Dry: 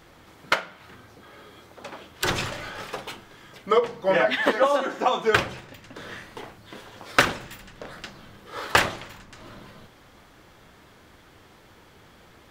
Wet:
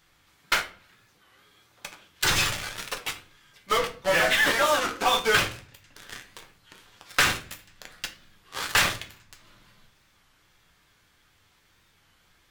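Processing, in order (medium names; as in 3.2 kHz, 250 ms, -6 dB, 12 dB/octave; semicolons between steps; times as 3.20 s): amplifier tone stack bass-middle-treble 5-5-5; in parallel at -9 dB: fuzz box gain 44 dB, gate -44 dBFS; on the sum: simulated room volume 31 m³, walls mixed, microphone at 0.32 m; warped record 33 1/3 rpm, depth 160 cents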